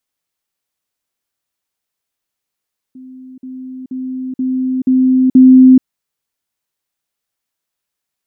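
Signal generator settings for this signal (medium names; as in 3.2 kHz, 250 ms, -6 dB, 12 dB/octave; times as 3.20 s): level ladder 258 Hz -31.5 dBFS, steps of 6 dB, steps 6, 0.43 s 0.05 s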